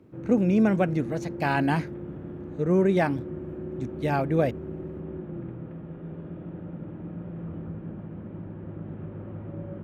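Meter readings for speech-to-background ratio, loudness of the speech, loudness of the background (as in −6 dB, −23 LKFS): 12.5 dB, −25.0 LKFS, −37.5 LKFS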